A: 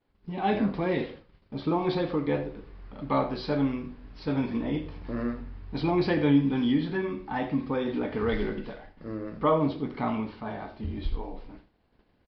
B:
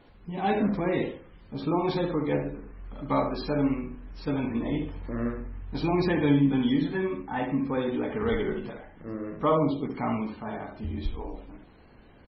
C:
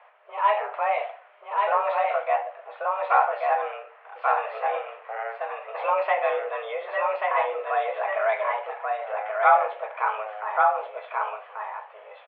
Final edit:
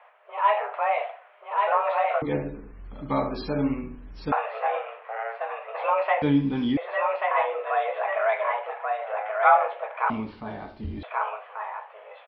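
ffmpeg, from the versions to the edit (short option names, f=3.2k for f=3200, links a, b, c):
-filter_complex "[0:a]asplit=2[a][b];[2:a]asplit=4[c][d][e][f];[c]atrim=end=2.222[g];[1:a]atrim=start=2.218:end=4.322[h];[d]atrim=start=4.318:end=6.222[i];[a]atrim=start=6.218:end=6.772[j];[e]atrim=start=6.768:end=10.102[k];[b]atrim=start=10.098:end=11.032[l];[f]atrim=start=11.028[m];[g][h]acrossfade=d=0.004:c1=hsin:c2=hsin[n];[n][i]acrossfade=d=0.004:c1=hsin:c2=hsin[o];[o][j]acrossfade=d=0.004:c1=hsin:c2=hsin[p];[p][k]acrossfade=d=0.004:c1=hsin:c2=hsin[q];[q][l]acrossfade=d=0.004:c1=hsin:c2=hsin[r];[r][m]acrossfade=d=0.004:c1=hsin:c2=hsin"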